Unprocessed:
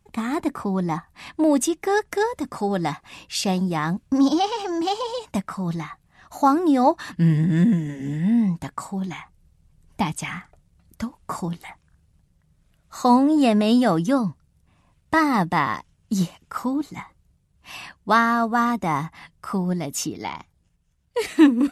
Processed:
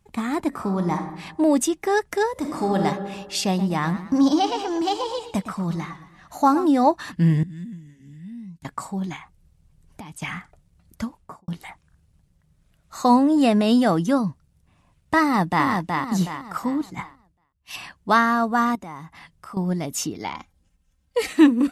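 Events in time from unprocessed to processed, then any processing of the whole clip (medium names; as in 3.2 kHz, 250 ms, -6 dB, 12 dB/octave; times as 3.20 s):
0.48–1.11 s: reverb throw, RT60 0.96 s, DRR 4.5 dB
2.32–2.79 s: reverb throw, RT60 1.6 s, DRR 0.5 dB
3.47–6.66 s: modulated delay 114 ms, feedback 44%, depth 114 cents, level -12.5 dB
7.43–8.65 s: amplifier tone stack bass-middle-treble 6-0-2
9.16–10.22 s: compression, threshold -36 dBFS
11.07–11.48 s: studio fade out
15.22–15.67 s: echo throw 370 ms, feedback 40%, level -4 dB
16.90–17.76 s: three bands expanded up and down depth 100%
18.75–19.57 s: compression 2.5:1, threshold -40 dBFS
20.34–21.33 s: comb 3.8 ms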